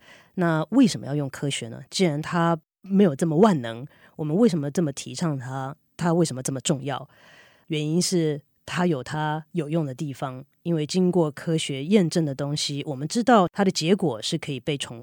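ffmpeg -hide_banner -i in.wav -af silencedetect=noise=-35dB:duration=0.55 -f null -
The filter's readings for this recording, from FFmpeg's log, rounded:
silence_start: 7.04
silence_end: 7.70 | silence_duration: 0.67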